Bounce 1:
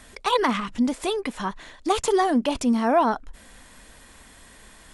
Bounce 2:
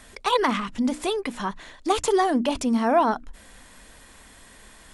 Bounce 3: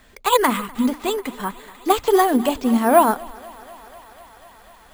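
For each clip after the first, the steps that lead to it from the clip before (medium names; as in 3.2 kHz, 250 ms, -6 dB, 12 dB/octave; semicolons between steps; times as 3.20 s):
hum notches 60/120/180/240/300 Hz
careless resampling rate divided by 4×, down filtered, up hold; thinning echo 247 ms, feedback 84%, high-pass 270 Hz, level -16 dB; upward expansion 1.5:1, over -34 dBFS; trim +7 dB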